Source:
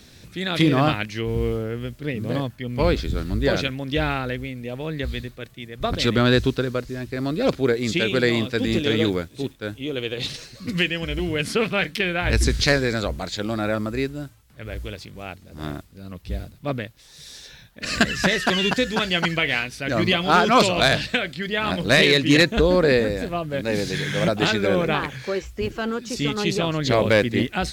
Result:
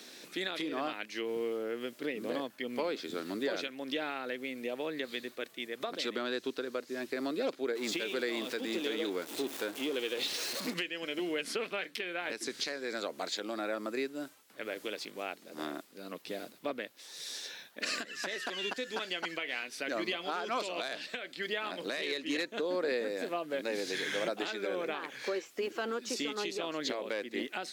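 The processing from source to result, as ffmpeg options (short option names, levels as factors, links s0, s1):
-filter_complex "[0:a]asettb=1/sr,asplit=3[s0][s1][s2];[s0]atrim=end=7.754[s3];[s1]atrim=start=7.75:end=10.74,asetpts=PTS-STARTPTS,afade=t=in:d=0.004:c=qsin,afade=t=out:st=2.986:d=0.004:c=qsin,aeval=exprs='val(0)+0.5*0.0316*sgn(val(0))':c=same[s4];[s2]atrim=start=10.736[s5];[s3][s4]acrossfade=d=0.004:c1=hsin:c2=qsin[s6];[s6][s5]acrossfade=d=0.004:c1=qsin:c2=hsin,highpass=f=280:w=0.5412,highpass=f=280:w=1.3066,acompressor=threshold=0.02:ratio=3,alimiter=limit=0.075:level=0:latency=1:release=357"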